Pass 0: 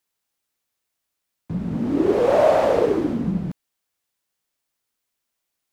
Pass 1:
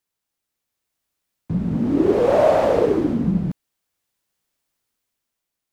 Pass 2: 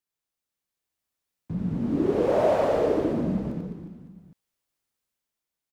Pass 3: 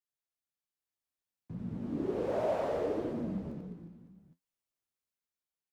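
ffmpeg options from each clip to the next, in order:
ffmpeg -i in.wav -af "lowshelf=frequency=340:gain=5,dynaudnorm=framelen=250:gausssize=7:maxgain=6dB,volume=-3.5dB" out.wav
ffmpeg -i in.wav -af "aecho=1:1:90|207|359.1|556.8|813.9:0.631|0.398|0.251|0.158|0.1,volume=-8dB" out.wav
ffmpeg -i in.wav -af "flanger=delay=8.1:depth=9.8:regen=54:speed=0.64:shape=sinusoidal,volume=-6dB" out.wav

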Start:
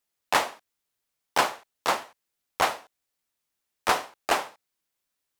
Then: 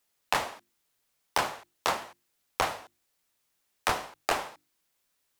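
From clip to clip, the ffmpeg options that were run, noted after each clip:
ffmpeg -i in.wav -filter_complex "[0:a]acrossover=split=140[link_01][link_02];[link_02]acompressor=threshold=-31dB:ratio=6[link_03];[link_01][link_03]amix=inputs=2:normalize=0,bandreject=frequency=50:width_type=h:width=6,bandreject=frequency=100:width_type=h:width=6,bandreject=frequency=150:width_type=h:width=6,bandreject=frequency=200:width_type=h:width=6,bandreject=frequency=250:width_type=h:width=6,bandreject=frequency=300:width_type=h:width=6,bandreject=frequency=350:width_type=h:width=6,volume=6dB" out.wav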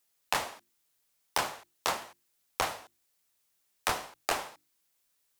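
ffmpeg -i in.wav -af "highshelf=frequency=4400:gain=6,volume=-3.5dB" out.wav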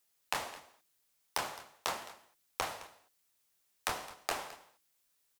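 ffmpeg -i in.wav -af "acompressor=threshold=-33dB:ratio=2,aecho=1:1:214:0.133,volume=-1dB" out.wav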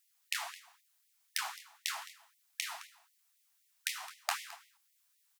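ffmpeg -i in.wav -af "afftfilt=real='re*gte(b*sr/1024,630*pow(1900/630,0.5+0.5*sin(2*PI*3.9*pts/sr)))':imag='im*gte(b*sr/1024,630*pow(1900/630,0.5+0.5*sin(2*PI*3.9*pts/sr)))':win_size=1024:overlap=0.75,volume=2dB" out.wav

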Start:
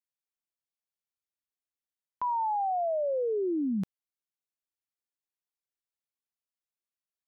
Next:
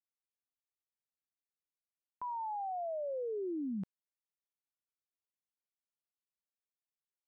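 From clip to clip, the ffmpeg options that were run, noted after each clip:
ffmpeg -i in.wav -af "lowpass=frequency=1300:poles=1,volume=-8dB" out.wav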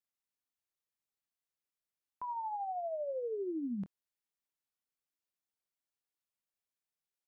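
ffmpeg -i in.wav -filter_complex "[0:a]asplit=2[link_01][link_02];[link_02]adelay=25,volume=-12.5dB[link_03];[link_01][link_03]amix=inputs=2:normalize=0" out.wav

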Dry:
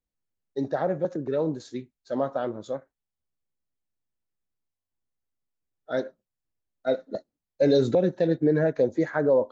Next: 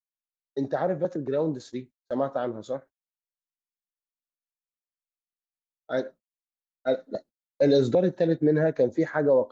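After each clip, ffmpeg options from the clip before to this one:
ffmpeg -i in.wav -af "agate=range=-30dB:threshold=-45dB:ratio=16:detection=peak" out.wav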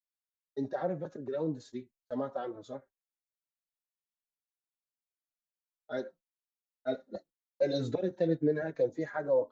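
ffmpeg -i in.wav -filter_complex "[0:a]asplit=2[link_01][link_02];[link_02]adelay=4.2,afreqshift=-1.9[link_03];[link_01][link_03]amix=inputs=2:normalize=1,volume=-5dB" out.wav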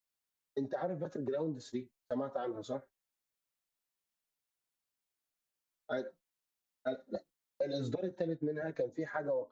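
ffmpeg -i in.wav -af "acompressor=threshold=-38dB:ratio=6,volume=5dB" out.wav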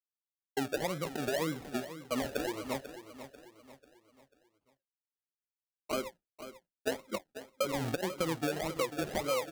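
ffmpeg -i in.wav -af "agate=range=-33dB:threshold=-52dB:ratio=3:detection=peak,acrusher=samples=34:mix=1:aa=0.000001:lfo=1:lforange=20.4:lforate=1.8,aecho=1:1:492|984|1476|1968:0.237|0.0996|0.0418|0.0176,volume=2.5dB" out.wav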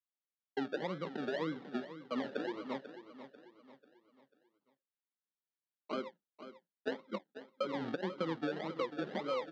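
ffmpeg -i in.wav -af "highpass=frequency=170:width=0.5412,highpass=frequency=170:width=1.3066,equalizer=frequency=200:width_type=q:width=4:gain=4,equalizer=frequency=670:width_type=q:width=4:gain=-6,equalizer=frequency=2500:width_type=q:width=4:gain=-9,lowpass=frequency=3800:width=0.5412,lowpass=frequency=3800:width=1.3066,volume=-2.5dB" out.wav

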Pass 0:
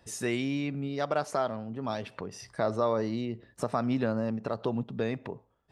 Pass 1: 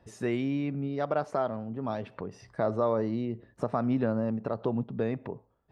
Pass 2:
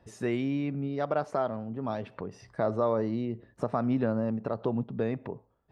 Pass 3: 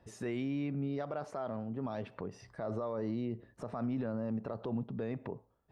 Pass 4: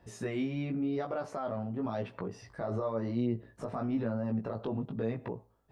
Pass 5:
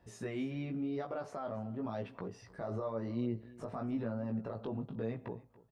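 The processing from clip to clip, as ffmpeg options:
ffmpeg -i in.wav -af "lowpass=frequency=1200:poles=1,volume=1.5dB" out.wav
ffmpeg -i in.wav -af anull out.wav
ffmpeg -i in.wav -af "alimiter=level_in=1.5dB:limit=-24dB:level=0:latency=1:release=24,volume=-1.5dB,volume=-2.5dB" out.wav
ffmpeg -i in.wav -af "flanger=delay=16.5:depth=3.3:speed=0.94,volume=6.5dB" out.wav
ffmpeg -i in.wav -af "aecho=1:1:283:0.1,volume=-4.5dB" out.wav

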